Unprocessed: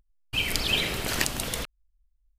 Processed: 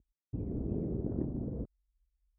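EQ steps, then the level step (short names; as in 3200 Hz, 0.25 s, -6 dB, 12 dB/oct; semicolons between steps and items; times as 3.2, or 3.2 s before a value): HPF 54 Hz; ladder low-pass 440 Hz, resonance 25%; air absorption 300 m; +6.0 dB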